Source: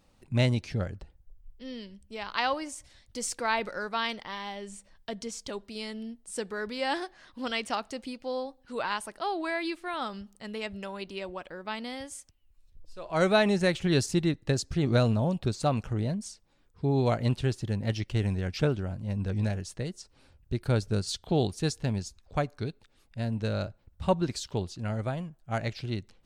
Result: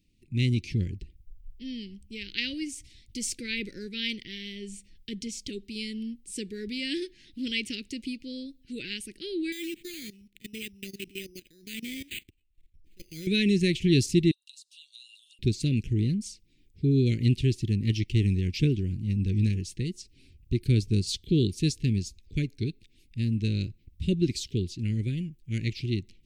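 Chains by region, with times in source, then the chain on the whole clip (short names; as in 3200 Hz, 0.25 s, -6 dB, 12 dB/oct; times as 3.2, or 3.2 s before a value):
9.52–13.27 bell 8600 Hz +6.5 dB 2.4 oct + level quantiser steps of 19 dB + careless resampling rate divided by 8×, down none, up hold
14.31–15.39 rippled Chebyshev high-pass 2700 Hz, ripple 9 dB + compressor 4:1, threshold -49 dBFS
whole clip: elliptic band-stop 360–2300 Hz, stop band 50 dB; bell 9000 Hz -4 dB 1.5 oct; AGC gain up to 8.5 dB; gain -3.5 dB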